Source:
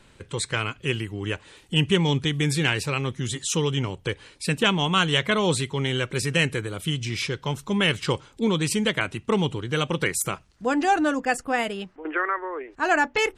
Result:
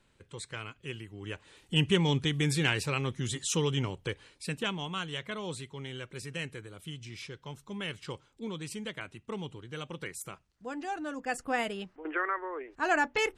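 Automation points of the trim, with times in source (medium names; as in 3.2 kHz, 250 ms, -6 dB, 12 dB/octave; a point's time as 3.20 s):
1.07 s -14 dB
1.76 s -5 dB
3.85 s -5 dB
5.07 s -15.5 dB
11.04 s -15.5 dB
11.46 s -6 dB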